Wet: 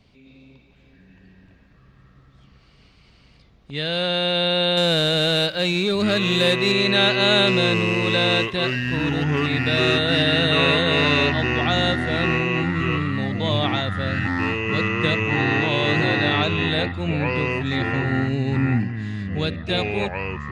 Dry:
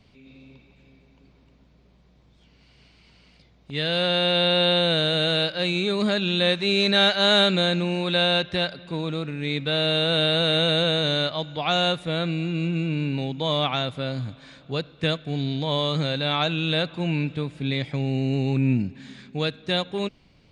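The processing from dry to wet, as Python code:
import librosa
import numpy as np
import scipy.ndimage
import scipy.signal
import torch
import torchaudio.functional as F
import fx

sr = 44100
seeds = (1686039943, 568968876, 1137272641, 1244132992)

y = fx.leveller(x, sr, passes=1, at=(4.77, 6.72))
y = fx.echo_pitch(y, sr, ms=723, semitones=-6, count=2, db_per_echo=-3.0)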